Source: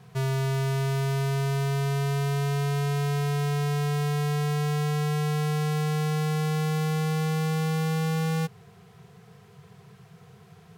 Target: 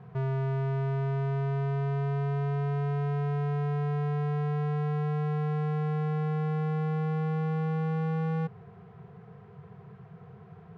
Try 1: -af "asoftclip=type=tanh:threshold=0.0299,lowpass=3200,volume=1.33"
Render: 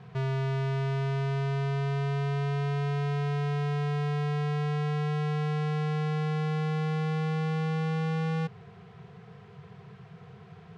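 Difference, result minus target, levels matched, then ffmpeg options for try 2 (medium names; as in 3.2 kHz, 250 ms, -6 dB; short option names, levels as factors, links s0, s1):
4 kHz band +11.5 dB
-af "asoftclip=type=tanh:threshold=0.0299,lowpass=1400,volume=1.33"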